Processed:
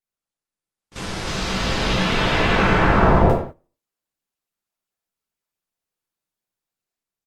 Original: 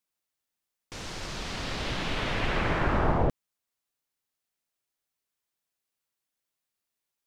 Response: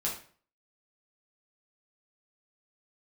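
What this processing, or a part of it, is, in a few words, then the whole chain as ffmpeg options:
speakerphone in a meeting room: -filter_complex "[1:a]atrim=start_sample=2205[s0];[0:a][s0]afir=irnorm=-1:irlink=0,asplit=2[s1][s2];[s2]adelay=90,highpass=300,lowpass=3400,asoftclip=type=hard:threshold=0.15,volume=0.398[s3];[s1][s3]amix=inputs=2:normalize=0,dynaudnorm=f=100:g=13:m=1.68,agate=range=0.224:threshold=0.0224:ratio=16:detection=peak,volume=1.26" -ar 48000 -c:a libopus -b:a 32k

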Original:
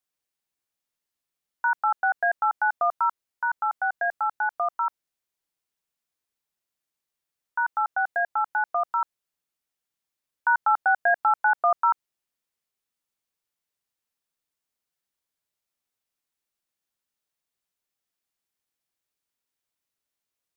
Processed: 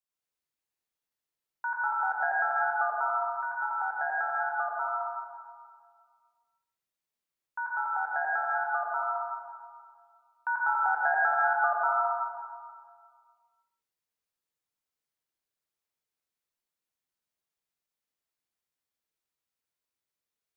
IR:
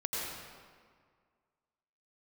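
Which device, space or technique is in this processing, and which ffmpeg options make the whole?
stairwell: -filter_complex "[1:a]atrim=start_sample=2205[s0];[0:a][s0]afir=irnorm=-1:irlink=0,volume=0.398"

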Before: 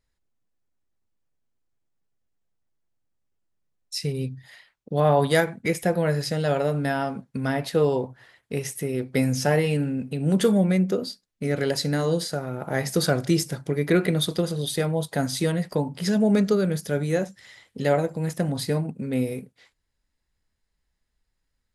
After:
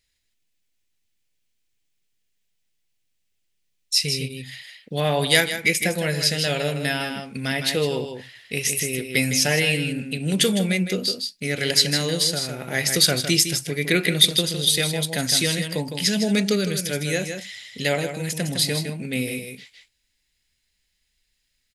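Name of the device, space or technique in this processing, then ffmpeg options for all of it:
ducked delay: -filter_complex "[0:a]asplit=3[s0][s1][s2];[s1]adelay=158,volume=0.596[s3];[s2]apad=whole_len=965765[s4];[s3][s4]sidechaincompress=threshold=0.0708:ratio=8:attack=35:release=647[s5];[s0][s5]amix=inputs=2:normalize=0,highshelf=f=1700:t=q:w=1.5:g=12.5,volume=0.794"

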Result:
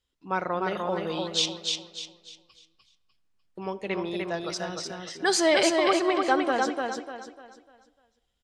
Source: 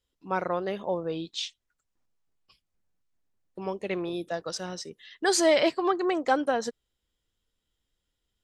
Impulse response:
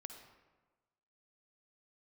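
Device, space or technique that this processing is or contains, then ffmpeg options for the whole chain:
filtered reverb send: -filter_complex "[0:a]lowpass=11000,asettb=1/sr,asplit=3[s0][s1][s2];[s0]atrim=end=0.774[s3];[s1]atrim=start=0.77:end=1.46,asetpts=PTS-STARTPTS,afade=t=in:d=0.004:c=qsin,afade=t=out:st=0.686:d=0.004:c=qsin,aemphasis=mode=production:type=75kf[s4];[s2]atrim=start=1.456[s5];[s3][s4]acrossfade=d=0.004:c1=hsin:c2=qsin[s6];[s6][s5]acrossfade=d=0.004:c1=qsin:c2=hsin,aecho=1:1:299|598|897|1196|1495:0.668|0.234|0.0819|0.0287|0.01,asplit=2[s7][s8];[s8]highpass=f=500:w=0.5412,highpass=f=500:w=1.3066,lowpass=5800[s9];[1:a]atrim=start_sample=2205[s10];[s9][s10]afir=irnorm=-1:irlink=0,volume=0.596[s11];[s7][s11]amix=inputs=2:normalize=0"

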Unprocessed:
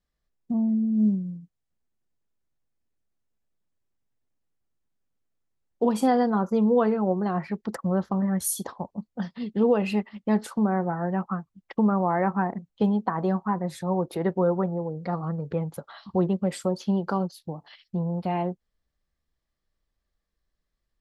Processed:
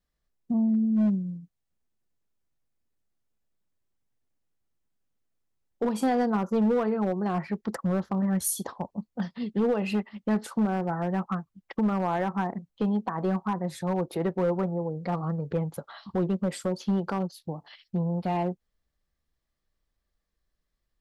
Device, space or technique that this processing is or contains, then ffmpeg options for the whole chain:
limiter into clipper: -af "alimiter=limit=0.158:level=0:latency=1:release=251,asoftclip=type=hard:threshold=0.106"

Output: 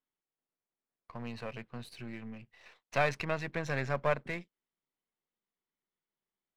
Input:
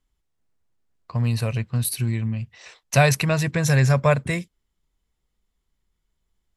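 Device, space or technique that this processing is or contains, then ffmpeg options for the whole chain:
crystal radio: -af "highpass=250,lowpass=3000,aeval=exprs='if(lt(val(0),0),0.447*val(0),val(0))':c=same,volume=0.422"

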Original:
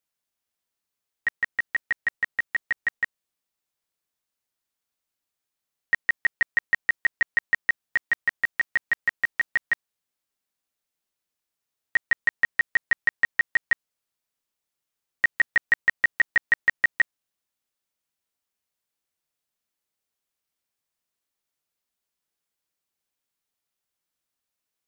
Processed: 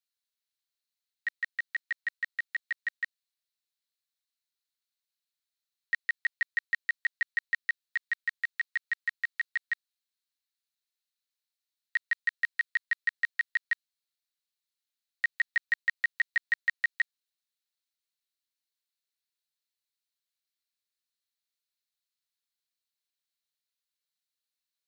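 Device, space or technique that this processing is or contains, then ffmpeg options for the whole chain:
headphones lying on a table: -af "highpass=f=1400:w=0.5412,highpass=f=1400:w=1.3066,equalizer=f=4100:t=o:w=0.39:g=10,volume=0.447"

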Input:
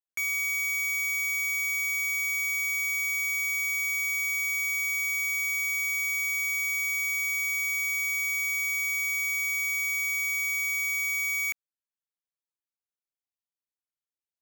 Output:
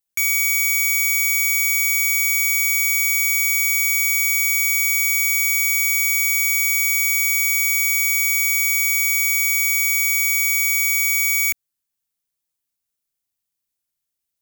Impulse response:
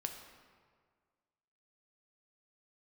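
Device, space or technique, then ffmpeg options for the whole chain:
smiley-face EQ: -af "lowshelf=f=170:g=6,equalizer=f=820:t=o:w=2.8:g=-4,highshelf=f=6500:g=8.5,volume=2.66"

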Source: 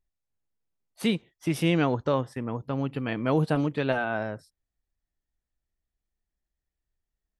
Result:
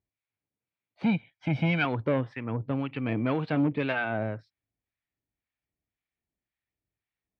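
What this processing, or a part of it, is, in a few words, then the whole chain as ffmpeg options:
guitar amplifier with harmonic tremolo: -filter_complex "[0:a]acrossover=split=840[s0][s1];[s0]aeval=exprs='val(0)*(1-0.7/2+0.7/2*cos(2*PI*1.9*n/s))':c=same[s2];[s1]aeval=exprs='val(0)*(1-0.7/2-0.7/2*cos(2*PI*1.9*n/s))':c=same[s3];[s2][s3]amix=inputs=2:normalize=0,asoftclip=type=tanh:threshold=0.0708,highpass=96,equalizer=f=110:t=q:w=4:g=7,equalizer=f=280:t=q:w=4:g=4,equalizer=f=2300:t=q:w=4:g=9,lowpass=f=3800:w=0.5412,lowpass=f=3800:w=1.3066,asettb=1/sr,asplit=3[s4][s5][s6];[s4]atrim=end=1.034[s7];[s5]atrim=start=1.03:end=1.85,asetpts=PTS-STARTPTS,afade=t=in:d=0.004:c=qsin,afade=t=out:st=0.816:d=0.004:c=qsin,aecho=1:1:1.3:0.81,atrim=end_sample=36162[s8];[s6]atrim=start=1.846[s9];[s7][s8]acrossfade=d=0.004:c1=hsin:c2=qsin[s10];[s10][s9]acrossfade=d=0.004:c1=qsin:c2=hsin,volume=1.33"

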